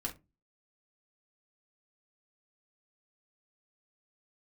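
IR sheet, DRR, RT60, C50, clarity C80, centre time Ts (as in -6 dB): -1.5 dB, not exponential, 14.5 dB, 23.5 dB, 12 ms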